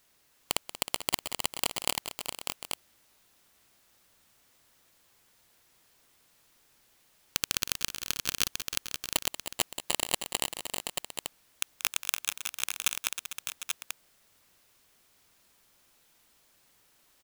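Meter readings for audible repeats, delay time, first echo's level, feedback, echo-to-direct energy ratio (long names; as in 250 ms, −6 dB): 6, 184 ms, −13.0 dB, repeats not evenly spaced, −3.0 dB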